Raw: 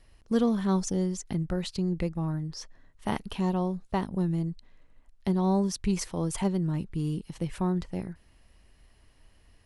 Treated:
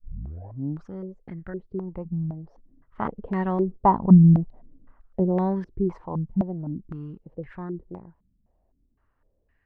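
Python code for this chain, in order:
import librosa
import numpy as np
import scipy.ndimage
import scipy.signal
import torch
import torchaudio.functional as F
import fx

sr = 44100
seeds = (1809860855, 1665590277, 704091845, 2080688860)

y = fx.tape_start_head(x, sr, length_s=0.94)
y = fx.doppler_pass(y, sr, speed_mps=8, closest_m=4.4, pass_at_s=4.34)
y = fx.filter_held_lowpass(y, sr, hz=3.9, low_hz=200.0, high_hz=1800.0)
y = F.gain(torch.from_numpy(y), 7.0).numpy()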